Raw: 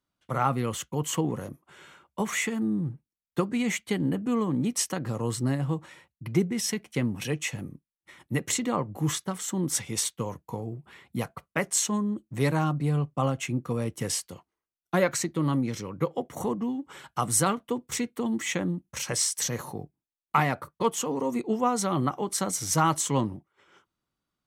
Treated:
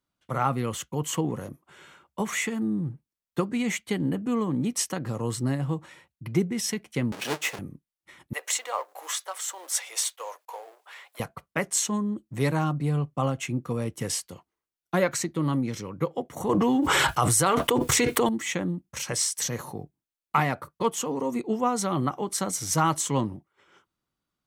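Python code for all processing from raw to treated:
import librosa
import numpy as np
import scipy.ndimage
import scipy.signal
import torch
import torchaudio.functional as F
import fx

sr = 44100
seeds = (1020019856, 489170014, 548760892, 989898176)

y = fx.chain(x, sr, fx.halfwave_hold(),
    fx.highpass(hz=340.0, slope=12),
    fx.high_shelf(hz=12000.0, db=-8.5), at=(7.12, 7.59))
y = fx.chain(y, sr, fx.law_mismatch(coded='mu'),
    fx.steep_highpass(hz=540.0, slope=36), at=(8.33, 11.2))
y = fx.chain(y, sr, fx.peak_eq(hz=220.0, db=-14.0, octaves=0.47),
    fx.env_flatten(amount_pct=100), at=(16.49, 18.29))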